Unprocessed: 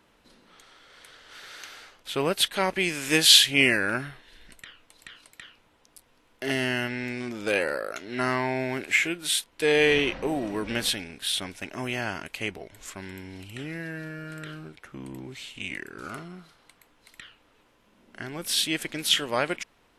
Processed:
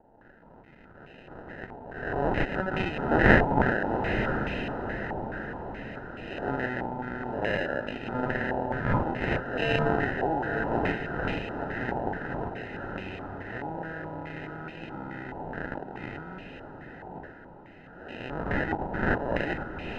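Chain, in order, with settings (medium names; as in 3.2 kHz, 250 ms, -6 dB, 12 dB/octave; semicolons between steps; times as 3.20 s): reverse spectral sustain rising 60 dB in 0.77 s; in parallel at -1 dB: compression, threshold -36 dBFS, peak gain reduction 25 dB; on the sum: sample-and-hold 39×; echo that smears into a reverb 918 ms, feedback 50%, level -7 dB; step-sequenced low-pass 4.7 Hz 900–2500 Hz; trim -7.5 dB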